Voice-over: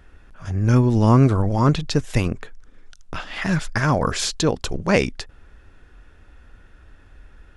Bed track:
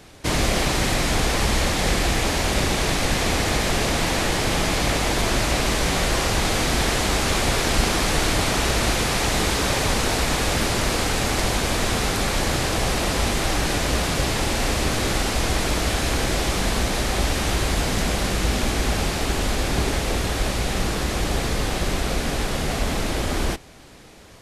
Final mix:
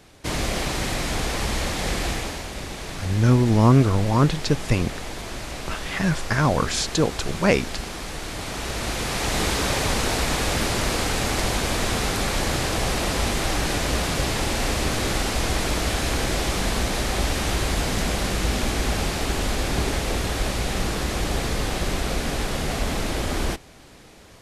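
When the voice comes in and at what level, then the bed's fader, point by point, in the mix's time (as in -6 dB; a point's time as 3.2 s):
2.55 s, -1.0 dB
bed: 2.1 s -4.5 dB
2.49 s -12 dB
8.21 s -12 dB
9.43 s -1.5 dB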